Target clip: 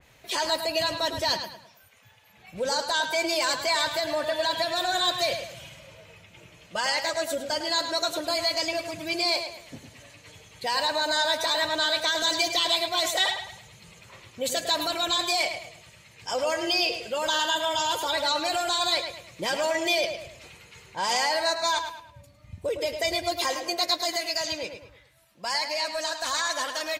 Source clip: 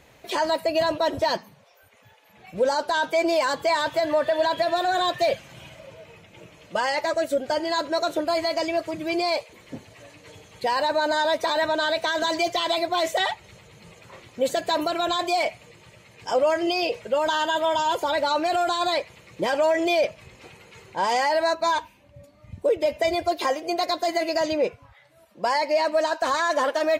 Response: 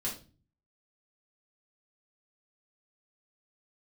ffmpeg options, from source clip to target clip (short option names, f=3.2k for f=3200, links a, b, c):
-filter_complex "[0:a]asetnsamples=n=441:p=0,asendcmd='24.16 equalizer g -14.5',equalizer=f=420:w=0.43:g=-8,asplit=2[a][b];[b]adelay=106,lowpass=f=4.5k:p=1,volume=-7.5dB,asplit=2[c][d];[d]adelay=106,lowpass=f=4.5k:p=1,volume=0.39,asplit=2[e][f];[f]adelay=106,lowpass=f=4.5k:p=1,volume=0.39,asplit=2[g][h];[h]adelay=106,lowpass=f=4.5k:p=1,volume=0.39[i];[a][c][e][g][i]amix=inputs=5:normalize=0,adynamicequalizer=threshold=0.00708:dfrequency=3100:dqfactor=0.7:tfrequency=3100:tqfactor=0.7:attack=5:release=100:ratio=0.375:range=3.5:mode=boostabove:tftype=highshelf"